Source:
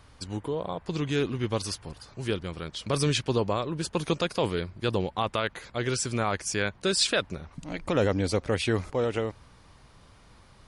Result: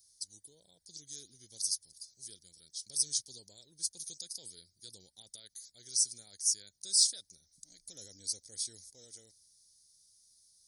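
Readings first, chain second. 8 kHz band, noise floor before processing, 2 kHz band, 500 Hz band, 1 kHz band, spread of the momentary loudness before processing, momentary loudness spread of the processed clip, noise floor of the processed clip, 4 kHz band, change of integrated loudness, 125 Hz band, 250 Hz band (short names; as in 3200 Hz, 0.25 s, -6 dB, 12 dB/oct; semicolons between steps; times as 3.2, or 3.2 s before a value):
+4.0 dB, -55 dBFS, under -35 dB, -35.5 dB, under -40 dB, 11 LU, 22 LU, -75 dBFS, -4.5 dB, -4.0 dB, under -30 dB, under -30 dB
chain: inverse Chebyshev high-pass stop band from 2900 Hz, stop band 40 dB; notch 7400 Hz, Q 6.3; gain +6.5 dB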